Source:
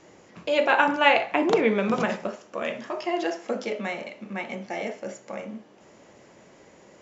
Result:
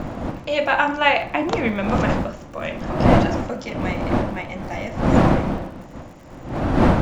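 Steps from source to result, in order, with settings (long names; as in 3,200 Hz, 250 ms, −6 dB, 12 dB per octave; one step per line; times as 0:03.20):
wind on the microphone 470 Hz −23 dBFS
parametric band 420 Hz −13.5 dB 0.24 octaves
surface crackle 76 per second −41 dBFS
level +2 dB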